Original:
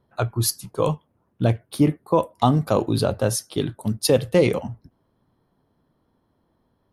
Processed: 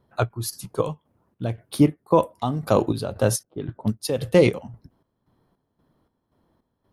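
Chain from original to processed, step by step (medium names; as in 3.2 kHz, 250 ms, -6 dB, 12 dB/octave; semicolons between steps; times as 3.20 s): square tremolo 1.9 Hz, depth 65%, duty 55%; 3.43–3.93 s: level-controlled noise filter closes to 600 Hz, open at -20 dBFS; endings held to a fixed fall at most 510 dB/s; trim +1.5 dB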